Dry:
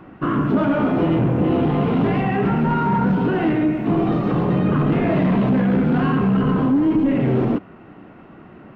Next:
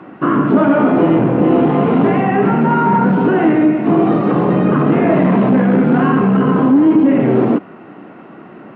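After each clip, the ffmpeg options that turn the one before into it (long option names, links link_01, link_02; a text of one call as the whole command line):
ffmpeg -i in.wav -filter_complex "[0:a]highpass=200,aemphasis=mode=reproduction:type=50kf,acrossover=split=2800[link_01][link_02];[link_02]acompressor=threshold=-56dB:ratio=4:attack=1:release=60[link_03];[link_01][link_03]amix=inputs=2:normalize=0,volume=8dB" out.wav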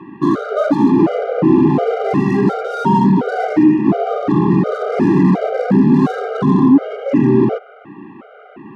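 ffmpeg -i in.wav -filter_complex "[0:a]acrossover=split=990[link_01][link_02];[link_02]asoftclip=type=tanh:threshold=-28dB[link_03];[link_01][link_03]amix=inputs=2:normalize=0,afftfilt=real='re*gt(sin(2*PI*1.4*pts/sr)*(1-2*mod(floor(b*sr/1024/400),2)),0)':imag='im*gt(sin(2*PI*1.4*pts/sr)*(1-2*mod(floor(b*sr/1024/400),2)),0)':win_size=1024:overlap=0.75,volume=2dB" out.wav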